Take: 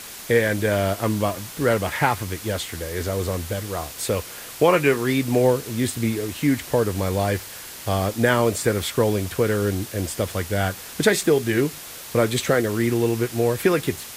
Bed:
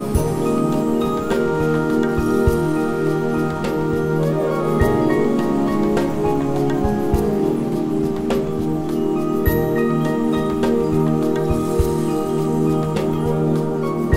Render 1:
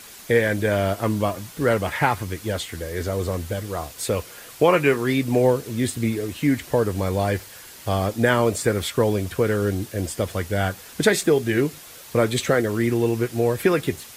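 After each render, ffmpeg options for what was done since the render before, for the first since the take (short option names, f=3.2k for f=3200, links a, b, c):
-af "afftdn=nr=6:nf=-38"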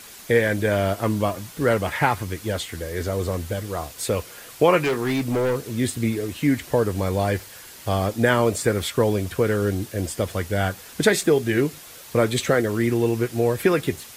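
-filter_complex "[0:a]asettb=1/sr,asplit=3[a][b][c];[a]atrim=end=4.834[d];[b]atrim=start=4.83:end=5.74,asetpts=PTS-STARTPTS,afade=t=in:d=0.004:c=qsin,afade=t=out:st=0.906:d=0.004:c=qsin,asoftclip=type=hard:threshold=-19dB[e];[c]atrim=start=5.736[f];[d][e]acrossfade=d=0.004:c1=hsin:c2=qsin[g];[g][f]acrossfade=d=0.004:c1=qsin:c2=hsin"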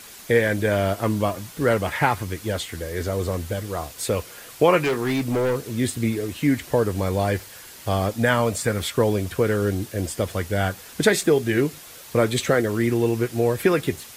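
-filter_complex "[0:a]asettb=1/sr,asplit=3[a][b][c];[a]atrim=end=8.114[d];[b]atrim=start=8.11:end=8.8,asetpts=PTS-STARTPTS,afade=t=in:d=0.004:c=qsin,afade=t=out:st=0.686:d=0.004:c=qsin,equalizer=f=370:t=o:w=0.38:g=-11[e];[c]atrim=start=8.796[f];[d][e]acrossfade=d=0.004:c1=hsin:c2=qsin[g];[g][f]acrossfade=d=0.004:c1=qsin:c2=hsin"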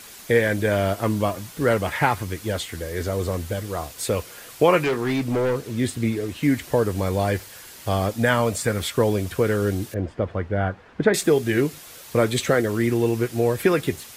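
-filter_complex "[0:a]asettb=1/sr,asplit=3[a][b][c];[a]atrim=end=4.844[d];[b]atrim=start=4.84:end=6.43,asetpts=PTS-STARTPTS,afade=t=in:d=0.004:c=qsin,afade=t=out:st=1.586:d=0.004:c=qsin,highshelf=f=6.7k:g=-6[e];[c]atrim=start=6.426[f];[d][e]acrossfade=d=0.004:c1=hsin:c2=qsin[g];[g][f]acrossfade=d=0.004:c1=qsin:c2=hsin,asettb=1/sr,asplit=3[h][i][j];[h]atrim=end=9.944[k];[i]atrim=start=9.94:end=11.14,asetpts=PTS-STARTPTS,afade=t=in:d=0.004:c=qsin,afade=t=out:st=1.196:d=0.004:c=qsin,lowpass=1.6k[l];[j]atrim=start=11.136[m];[k][l]acrossfade=d=0.004:c1=hsin:c2=qsin[n];[n][m]acrossfade=d=0.004:c1=qsin:c2=hsin"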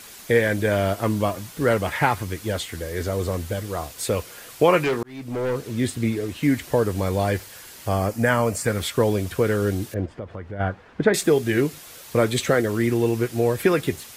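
-filter_complex "[0:a]asettb=1/sr,asplit=3[a][b][c];[a]atrim=end=7.874[d];[b]atrim=start=7.87:end=8.66,asetpts=PTS-STARTPTS,afade=t=in:d=0.004:c=qsin,afade=t=out:st=0.786:d=0.004:c=qsin,equalizer=f=3.6k:w=4.1:g=-13.5[e];[c]atrim=start=8.656[f];[d][e]acrossfade=d=0.004:c1=hsin:c2=qsin[g];[g][f]acrossfade=d=0.004:c1=qsin:c2=hsin,asplit=3[h][i][j];[h]afade=t=out:st=10.05:d=0.02[k];[i]acompressor=threshold=-33dB:ratio=2.5:attack=3.2:release=140:knee=1:detection=peak,afade=t=in:st=10.05:d=0.02,afade=t=out:st=10.59:d=0.02[l];[j]afade=t=in:st=10.59:d=0.02[m];[k][l][m]amix=inputs=3:normalize=0,asplit=2[n][o];[n]atrim=end=5.03,asetpts=PTS-STARTPTS,afade=t=out:st=5.026:d=0.004:c=hsin[p];[o]atrim=start=5.03,asetpts=PTS-STARTPTS,afade=t=in:d=0.59[q];[p][q]concat=n=2:v=0:a=1"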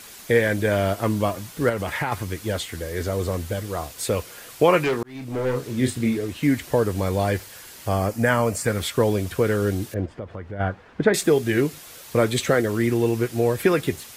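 -filter_complex "[0:a]asettb=1/sr,asplit=3[a][b][c];[a]atrim=end=1.694[d];[b]atrim=start=1.69:end=2.12,asetpts=PTS-STARTPTS,afade=t=in:d=0.004:c=qsin,afade=t=out:st=0.426:d=0.004:c=qsin,acompressor=threshold=-21dB:ratio=6:attack=3.2:release=140:knee=1:detection=peak[e];[c]atrim=start=2.116[f];[d][e]acrossfade=d=0.004:c1=hsin:c2=qsin[g];[g][f]acrossfade=d=0.004:c1=qsin:c2=hsin,asettb=1/sr,asplit=3[h][i][j];[h]atrim=end=5.124[k];[i]atrim=start=5.12:end=6.17,asetpts=PTS-STARTPTS,afade=t=in:d=0.004:c=qsin,afade=t=out:st=1.046:d=0.004:c=qsin,asplit=2[l][m];[m]adelay=31,volume=-7dB[n];[l][n]amix=inputs=2:normalize=0,atrim=end_sample=46305[o];[j]atrim=start=6.166[p];[k][o]acrossfade=d=0.004:c1=hsin:c2=qsin[q];[q][p]acrossfade=d=0.004:c1=qsin:c2=hsin"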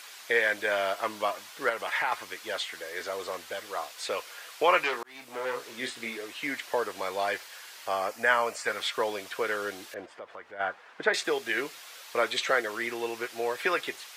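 -filter_complex "[0:a]highpass=800,acrossover=split=5700[a][b];[b]acompressor=threshold=-52dB:ratio=4:attack=1:release=60[c];[a][c]amix=inputs=2:normalize=0"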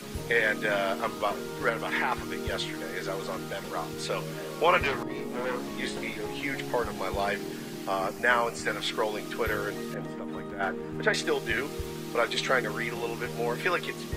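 -filter_complex "[1:a]volume=-18.5dB[a];[0:a][a]amix=inputs=2:normalize=0"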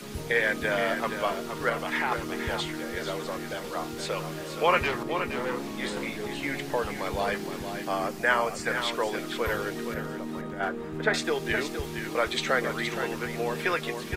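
-af "aecho=1:1:470:0.398"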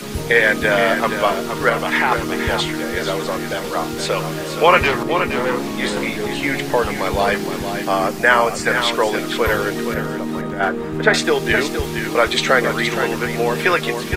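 -af "volume=11dB,alimiter=limit=-1dB:level=0:latency=1"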